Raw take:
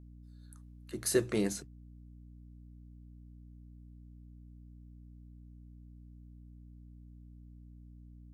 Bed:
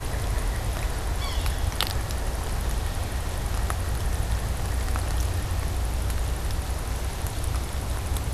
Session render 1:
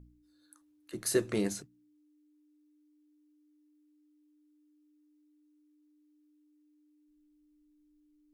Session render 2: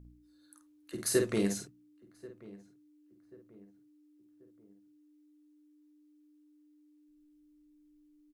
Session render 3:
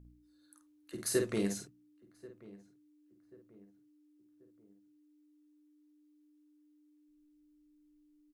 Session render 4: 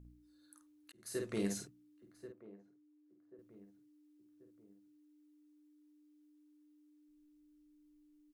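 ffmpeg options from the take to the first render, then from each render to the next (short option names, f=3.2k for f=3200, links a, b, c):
-af "bandreject=f=60:t=h:w=4,bandreject=f=120:t=h:w=4,bandreject=f=180:t=h:w=4,bandreject=f=240:t=h:w=4"
-filter_complex "[0:a]asplit=2[a][b];[b]adelay=50,volume=-5.5dB[c];[a][c]amix=inputs=2:normalize=0,asplit=2[d][e];[e]adelay=1086,lowpass=f=1.3k:p=1,volume=-20dB,asplit=2[f][g];[g]adelay=1086,lowpass=f=1.3k:p=1,volume=0.44,asplit=2[h][i];[i]adelay=1086,lowpass=f=1.3k:p=1,volume=0.44[j];[d][f][h][j]amix=inputs=4:normalize=0"
-af "volume=-3dB"
-filter_complex "[0:a]asettb=1/sr,asplit=3[a][b][c];[a]atrim=end=2.324[d];[b]atrim=start=2.32:end=3.39,asetpts=PTS-STARTPTS,afade=t=in:d=0.004:c=qsin,afade=t=out:st=1.066:d=0.004:c=qsin,bandpass=f=570:t=q:w=0.59[e];[c]atrim=start=3.386[f];[d][e]acrossfade=d=0.004:c1=hsin:c2=qsin[g];[g][f]acrossfade=d=0.004:c1=qsin:c2=hsin,asplit=2[h][i];[h]atrim=end=0.92,asetpts=PTS-STARTPTS,afade=t=out:st=0.916:d=0.004:c=hsin[j];[i]atrim=start=0.92,asetpts=PTS-STARTPTS,afade=t=in:d=0.73[k];[j][k]concat=n=2:v=0:a=1"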